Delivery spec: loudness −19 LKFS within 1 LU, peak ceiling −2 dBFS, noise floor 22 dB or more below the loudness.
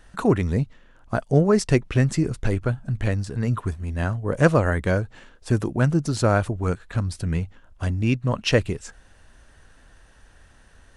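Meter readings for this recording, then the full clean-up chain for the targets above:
number of dropouts 1; longest dropout 1.6 ms; integrated loudness −23.5 LKFS; sample peak −3.0 dBFS; target loudness −19.0 LKFS
→ repair the gap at 0:06.17, 1.6 ms
level +4.5 dB
brickwall limiter −2 dBFS

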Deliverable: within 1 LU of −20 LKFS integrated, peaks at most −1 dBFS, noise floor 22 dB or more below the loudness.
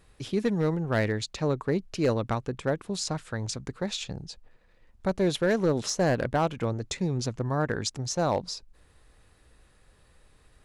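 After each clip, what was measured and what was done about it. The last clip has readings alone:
share of clipped samples 0.6%; peaks flattened at −17.5 dBFS; integrated loudness −29.0 LKFS; sample peak −17.5 dBFS; target loudness −20.0 LKFS
→ clipped peaks rebuilt −17.5 dBFS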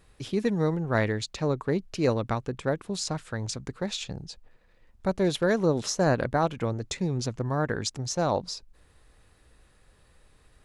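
share of clipped samples 0.0%; integrated loudness −28.5 LKFS; sample peak −10.5 dBFS; target loudness −20.0 LKFS
→ level +8.5 dB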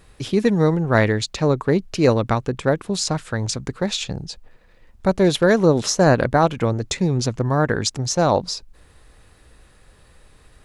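integrated loudness −20.0 LKFS; sample peak −2.0 dBFS; background noise floor −52 dBFS

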